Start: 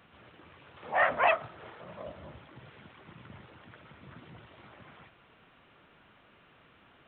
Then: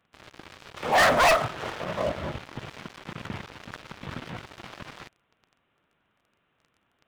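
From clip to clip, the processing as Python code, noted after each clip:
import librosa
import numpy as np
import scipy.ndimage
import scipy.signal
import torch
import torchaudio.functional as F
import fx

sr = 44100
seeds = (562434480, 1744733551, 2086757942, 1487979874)

y = fx.leveller(x, sr, passes=5)
y = y * librosa.db_to_amplitude(-2.5)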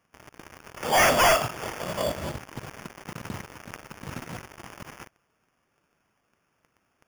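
y = fx.sample_hold(x, sr, seeds[0], rate_hz=4000.0, jitter_pct=0)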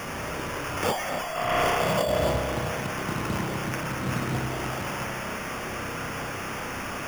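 y = x + 0.5 * 10.0 ** (-31.5 / 20.0) * np.sign(x)
y = fx.rev_spring(y, sr, rt60_s=2.3, pass_ms=(31,), chirp_ms=50, drr_db=2.0)
y = fx.over_compress(y, sr, threshold_db=-25.0, ratio=-1.0)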